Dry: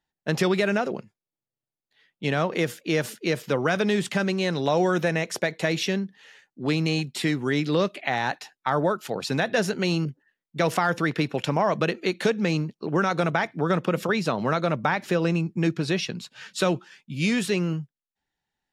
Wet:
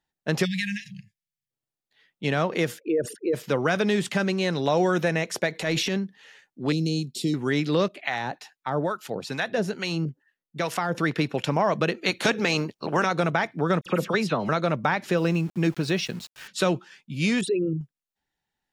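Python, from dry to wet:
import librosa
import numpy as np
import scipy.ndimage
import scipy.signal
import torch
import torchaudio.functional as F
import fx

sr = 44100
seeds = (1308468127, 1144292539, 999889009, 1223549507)

y = fx.spec_erase(x, sr, start_s=0.45, length_s=1.05, low_hz=210.0, high_hz=1600.0)
y = fx.envelope_sharpen(y, sr, power=3.0, at=(2.78, 3.33), fade=0.02)
y = fx.transient(y, sr, attack_db=-7, sustain_db=7, at=(5.54, 5.97), fade=0.02)
y = fx.cheby1_bandstop(y, sr, low_hz=390.0, high_hz=4300.0, order=2, at=(6.72, 7.34))
y = fx.harmonic_tremolo(y, sr, hz=2.3, depth_pct=70, crossover_hz=790.0, at=(7.88, 10.95))
y = fx.spec_clip(y, sr, under_db=15, at=(12.04, 13.05), fade=0.02)
y = fx.dispersion(y, sr, late='lows', ms=50.0, hz=2300.0, at=(13.81, 14.49))
y = fx.sample_gate(y, sr, floor_db=-42.5, at=(15.17, 16.48))
y = fx.envelope_sharpen(y, sr, power=3.0, at=(17.41, 17.81))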